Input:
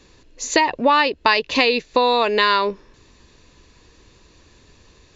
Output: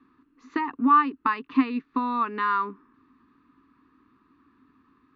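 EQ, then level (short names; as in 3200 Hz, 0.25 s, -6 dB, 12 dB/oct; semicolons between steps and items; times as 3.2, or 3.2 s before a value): double band-pass 570 Hz, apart 2.2 oct; air absorption 210 m; +4.5 dB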